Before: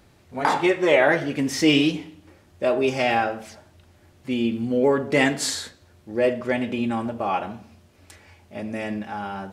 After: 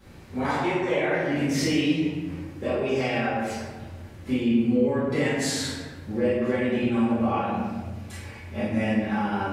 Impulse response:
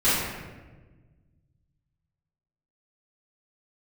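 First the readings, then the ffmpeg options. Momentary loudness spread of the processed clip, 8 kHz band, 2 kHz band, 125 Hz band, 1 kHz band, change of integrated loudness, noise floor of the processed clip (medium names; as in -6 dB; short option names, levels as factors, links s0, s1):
14 LU, -3.0 dB, -4.5 dB, +3.0 dB, -4.0 dB, -3.0 dB, -42 dBFS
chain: -filter_complex "[0:a]acompressor=threshold=0.0282:ratio=6[s0];[1:a]atrim=start_sample=2205[s1];[s0][s1]afir=irnorm=-1:irlink=0,volume=0.376"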